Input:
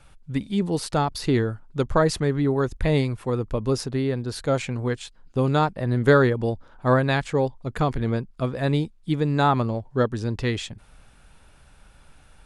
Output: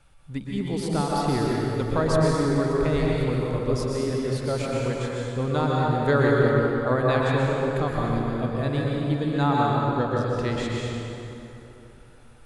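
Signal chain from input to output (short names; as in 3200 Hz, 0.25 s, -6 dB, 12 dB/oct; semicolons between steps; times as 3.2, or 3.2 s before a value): plate-style reverb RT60 3.2 s, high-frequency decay 0.65×, pre-delay 0.105 s, DRR -4 dB; gain -6 dB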